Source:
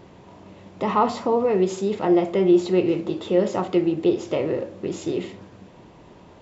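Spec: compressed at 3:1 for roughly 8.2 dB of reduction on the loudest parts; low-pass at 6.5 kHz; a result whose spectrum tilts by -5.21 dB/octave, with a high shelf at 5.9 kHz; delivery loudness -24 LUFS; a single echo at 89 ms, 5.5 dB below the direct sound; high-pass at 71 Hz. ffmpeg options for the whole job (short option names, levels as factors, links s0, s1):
-af "highpass=71,lowpass=6500,highshelf=f=5900:g=-4.5,acompressor=threshold=0.0631:ratio=3,aecho=1:1:89:0.531,volume=1.41"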